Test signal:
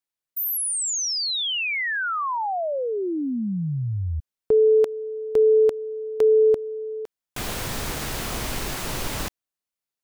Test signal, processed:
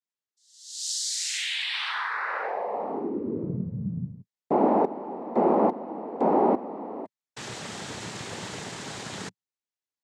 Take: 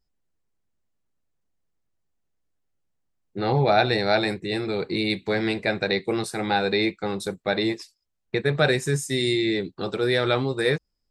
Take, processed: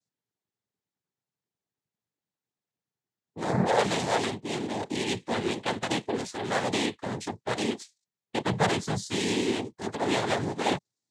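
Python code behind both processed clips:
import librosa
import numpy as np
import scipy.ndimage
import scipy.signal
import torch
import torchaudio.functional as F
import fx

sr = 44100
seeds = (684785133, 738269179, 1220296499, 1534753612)

y = fx.noise_vocoder(x, sr, seeds[0], bands=6)
y = y * librosa.db_to_amplitude(-4.5)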